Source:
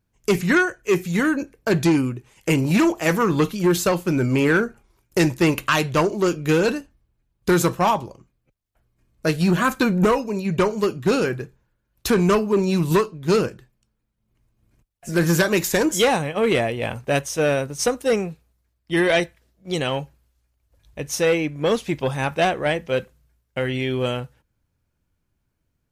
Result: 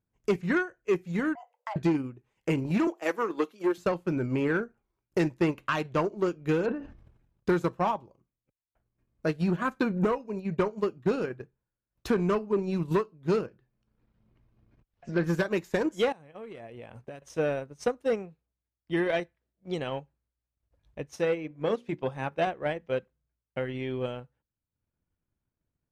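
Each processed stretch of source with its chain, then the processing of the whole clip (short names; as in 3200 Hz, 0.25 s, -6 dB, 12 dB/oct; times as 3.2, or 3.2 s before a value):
1.35–1.76 frequency shift +440 Hz + HPF 550 Hz + compressor 4:1, threshold -25 dBFS
2.87–3.78 HPF 290 Hz 24 dB/oct + high shelf 7000 Hz +5.5 dB
6.65–7.49 treble ducked by the level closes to 1800 Hz, closed at -20 dBFS + notch 4400 Hz, Q 18 + sustainer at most 57 dB/s
13.47–15.24 LPF 5500 Hz 24 dB/oct + upward compressor, threshold -42 dBFS
16.12–17.22 bell 9500 Hz +5.5 dB 0.91 oct + compressor 10:1, threshold -31 dBFS
21.16–22.47 HPF 80 Hz + notches 60/120/180/240/300/360/420/480/540 Hz
whole clip: LPF 1600 Hz 6 dB/oct; low shelf 90 Hz -5.5 dB; transient shaper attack +3 dB, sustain -9 dB; gain -8 dB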